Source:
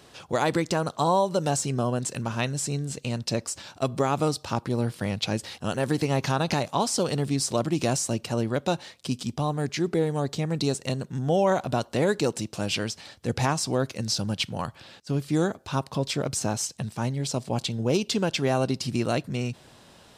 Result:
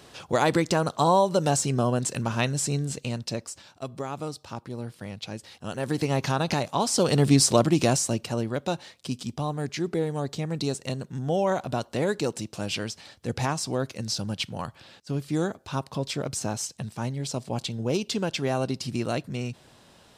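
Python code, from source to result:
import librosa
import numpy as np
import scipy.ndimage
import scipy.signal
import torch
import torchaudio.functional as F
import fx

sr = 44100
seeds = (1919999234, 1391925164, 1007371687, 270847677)

y = fx.gain(x, sr, db=fx.line((2.86, 2.0), (3.74, -9.0), (5.46, -9.0), (6.04, -0.5), (6.8, -0.5), (7.32, 8.0), (8.49, -2.5)))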